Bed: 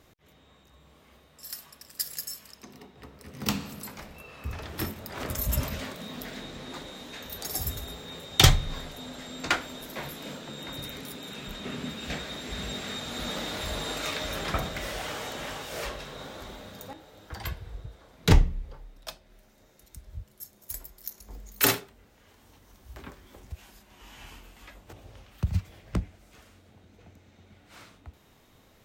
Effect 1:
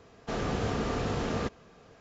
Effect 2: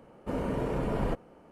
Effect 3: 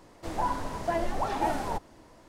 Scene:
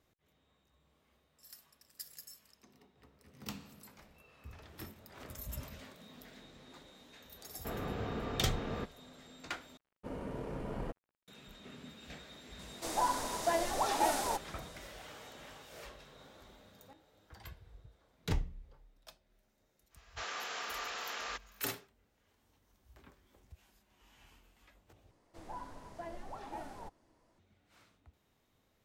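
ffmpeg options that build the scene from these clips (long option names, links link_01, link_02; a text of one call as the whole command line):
ffmpeg -i bed.wav -i cue0.wav -i cue1.wav -i cue2.wav -filter_complex "[1:a]asplit=2[link_01][link_02];[3:a]asplit=2[link_03][link_04];[0:a]volume=-15.5dB[link_05];[link_01]lowpass=3300[link_06];[2:a]aeval=exprs='sgn(val(0))*max(abs(val(0))-0.00422,0)':channel_layout=same[link_07];[link_03]bass=frequency=250:gain=-12,treble=frequency=4000:gain=12[link_08];[link_02]highpass=1300[link_09];[link_05]asplit=3[link_10][link_11][link_12];[link_10]atrim=end=9.774[link_13];[link_07]atrim=end=1.51,asetpts=PTS-STARTPTS,volume=-9.5dB[link_14];[link_11]atrim=start=11.276:end=25.114[link_15];[link_04]atrim=end=2.28,asetpts=PTS-STARTPTS,volume=-16.5dB[link_16];[link_12]atrim=start=27.386[link_17];[link_06]atrim=end=2,asetpts=PTS-STARTPTS,volume=-8dB,afade=type=in:duration=0.004:curve=hsin,afade=type=out:start_time=1.996:duration=0.004:curve=hsin,adelay=7370[link_18];[link_08]atrim=end=2.28,asetpts=PTS-STARTPTS,volume=-2dB,afade=type=in:duration=0.004:curve=hsin,afade=type=out:start_time=2.276:duration=0.004:curve=hsin,adelay=12590[link_19];[link_09]atrim=end=2,asetpts=PTS-STARTPTS,afade=type=in:duration=0.1,afade=type=out:start_time=1.9:duration=0.1,adelay=19890[link_20];[link_13][link_14]acrossfade=duration=0.004:curve1=hsin:curve2=hsin[link_21];[link_21][link_15]acrossfade=duration=0.004:curve1=hsin:curve2=hsin[link_22];[link_22][link_16]acrossfade=duration=0.004:curve1=hsin:curve2=hsin[link_23];[link_23][link_17]acrossfade=duration=0.004:curve1=hsin:curve2=hsin[link_24];[link_24][link_18][link_19][link_20]amix=inputs=4:normalize=0" out.wav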